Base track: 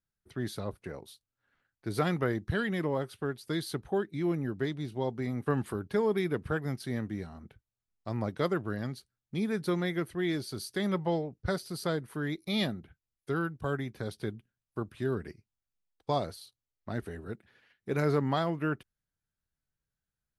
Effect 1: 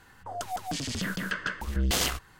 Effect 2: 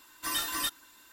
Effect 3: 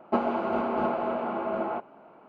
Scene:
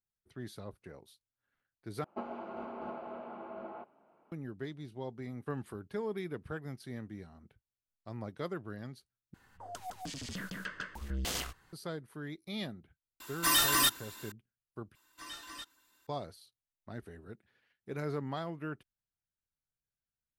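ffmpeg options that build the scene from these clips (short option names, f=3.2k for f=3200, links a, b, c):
-filter_complex "[2:a]asplit=2[a][b];[0:a]volume=-9dB[c];[a]aeval=exprs='0.126*sin(PI/2*1.78*val(0)/0.126)':c=same[d];[b]acrossover=split=8100[e][f];[f]acompressor=threshold=-51dB:ratio=4:attack=1:release=60[g];[e][g]amix=inputs=2:normalize=0[h];[c]asplit=4[i][j][k][l];[i]atrim=end=2.044[m];[3:a]atrim=end=2.28,asetpts=PTS-STARTPTS,volume=-15dB[n];[j]atrim=start=4.316:end=9.344[o];[1:a]atrim=end=2.39,asetpts=PTS-STARTPTS,volume=-9.5dB[p];[k]atrim=start=11.726:end=14.954[q];[h]atrim=end=1.12,asetpts=PTS-STARTPTS,volume=-13dB[r];[l]atrim=start=16.066[s];[d]atrim=end=1.12,asetpts=PTS-STARTPTS,volume=-2dB,afade=t=in:d=0.004:c=hsin,afade=t=out:st=1.116:d=0.004:c=hsin,adelay=13200[t];[m][n]acrossfade=d=0.004:c1=hsin:c2=hsin[u];[u][o]acrossfade=d=0.004:c1=hsin:c2=hsin[v];[v][p]acrossfade=d=0.004:c1=hsin:c2=hsin[w];[w][q]acrossfade=d=0.004:c1=hsin:c2=hsin[x];[x][r]acrossfade=d=0.004:c1=hsin:c2=hsin[y];[y][s]acrossfade=d=0.004:c1=hsin:c2=hsin[z];[z][t]amix=inputs=2:normalize=0"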